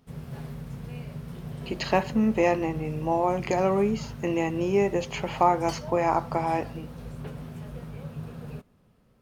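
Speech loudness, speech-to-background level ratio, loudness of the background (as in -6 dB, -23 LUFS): -26.0 LUFS, 13.0 dB, -39.0 LUFS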